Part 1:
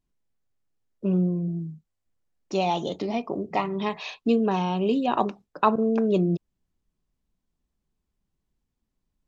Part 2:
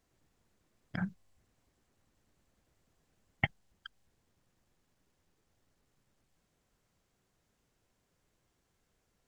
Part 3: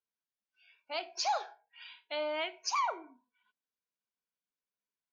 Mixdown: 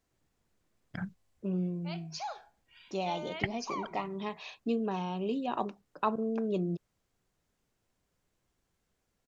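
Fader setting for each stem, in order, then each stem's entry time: -9.5 dB, -2.5 dB, -7.5 dB; 0.40 s, 0.00 s, 0.95 s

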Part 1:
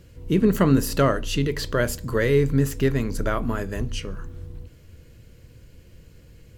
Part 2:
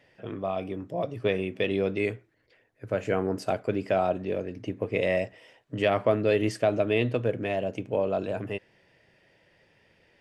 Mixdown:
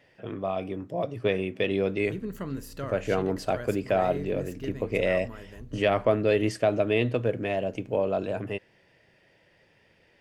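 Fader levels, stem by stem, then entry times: -16.5 dB, +0.5 dB; 1.80 s, 0.00 s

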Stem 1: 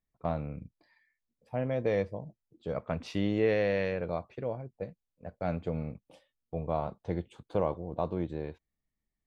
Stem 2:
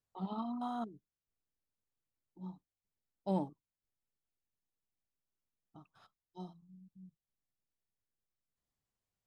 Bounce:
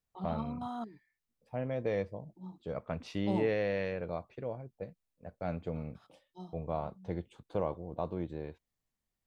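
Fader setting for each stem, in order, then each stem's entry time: -4.0 dB, -0.5 dB; 0.00 s, 0.00 s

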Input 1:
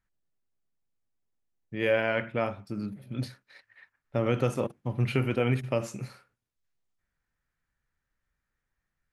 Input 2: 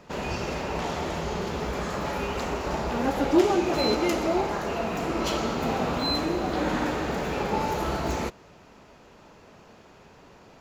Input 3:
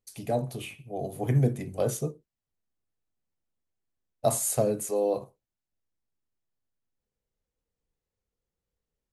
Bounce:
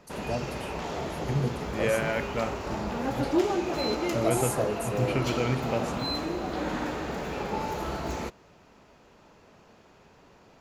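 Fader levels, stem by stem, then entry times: -2.0 dB, -4.5 dB, -5.0 dB; 0.00 s, 0.00 s, 0.00 s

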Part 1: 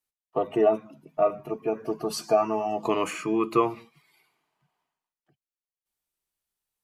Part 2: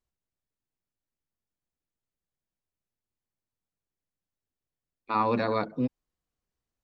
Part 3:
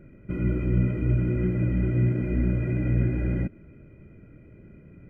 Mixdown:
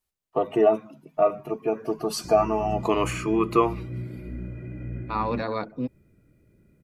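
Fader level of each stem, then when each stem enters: +2.0 dB, -1.5 dB, -11.0 dB; 0.00 s, 0.00 s, 1.95 s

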